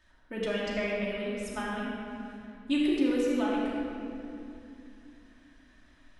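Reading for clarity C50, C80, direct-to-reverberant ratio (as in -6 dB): -2.0 dB, -0.5 dB, -7.0 dB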